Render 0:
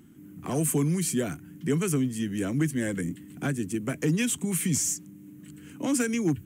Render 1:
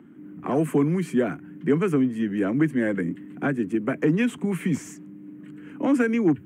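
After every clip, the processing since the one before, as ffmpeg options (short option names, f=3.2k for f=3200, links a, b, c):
-filter_complex "[0:a]acrossover=split=180 2500:gain=0.141 1 0.141[a][b][c];[a][b][c]amix=inputs=3:normalize=0,acrossover=split=2900[d][e];[d]acontrast=84[f];[f][e]amix=inputs=2:normalize=0"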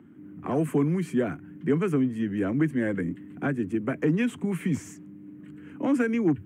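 -af "equalizer=f=93:w=2:g=11.5,volume=-3.5dB"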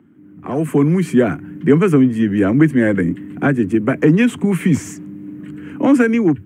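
-af "dynaudnorm=f=280:g=5:m=13dB,volume=1dB"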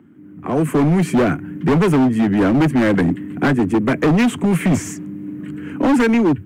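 -af "asoftclip=type=hard:threshold=-14dB,volume=2.5dB"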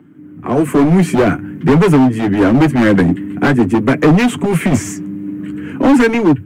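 -af "flanger=delay=6.6:depth=3.9:regen=-36:speed=0.48:shape=sinusoidal,volume=8dB"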